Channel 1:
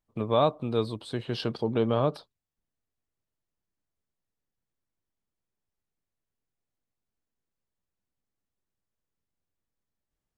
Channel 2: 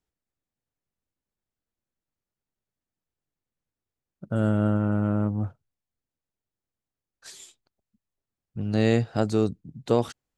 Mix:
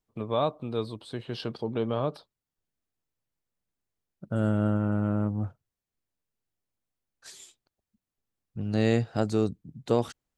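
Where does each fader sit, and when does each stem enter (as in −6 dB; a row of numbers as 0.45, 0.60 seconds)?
−3.5, −2.5 decibels; 0.00, 0.00 seconds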